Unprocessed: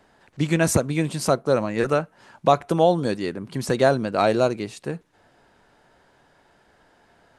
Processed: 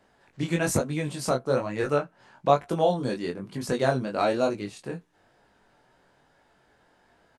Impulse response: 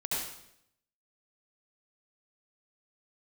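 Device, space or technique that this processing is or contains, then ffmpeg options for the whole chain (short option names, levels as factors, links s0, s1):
double-tracked vocal: -filter_complex "[0:a]asettb=1/sr,asplit=3[s0][s1][s2];[s0]atrim=end=1.944[s3];[s1]atrim=start=1.94:end=2.54,asetpts=PTS-STARTPTS,afade=t=in:d=0.004:c=qsin,afade=t=out:st=0.596:d=0.004:c=qsin,highshelf=f=9400:g=-10[s4];[s2]atrim=start=2.536[s5];[s3][s4]acrossfade=d=0.004:c1=hsin:c2=qsin[s6];[s6][s5]acrossfade=d=0.004:c1=qsin:c2=hsin,asplit=2[s7][s8];[s8]adelay=16,volume=0.266[s9];[s7][s9]amix=inputs=2:normalize=0,flanger=delay=19.5:depth=4.3:speed=1.1,volume=0.794"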